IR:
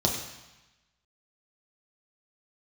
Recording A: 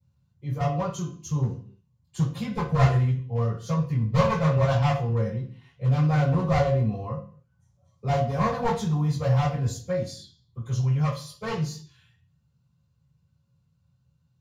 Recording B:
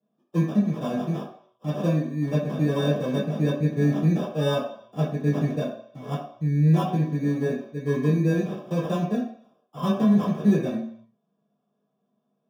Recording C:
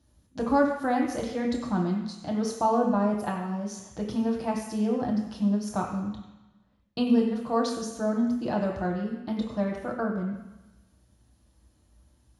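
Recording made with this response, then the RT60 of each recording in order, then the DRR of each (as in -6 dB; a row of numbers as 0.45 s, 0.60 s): C; 0.45 s, 0.65 s, 1.0 s; -13.5 dB, -10.5 dB, -0.5 dB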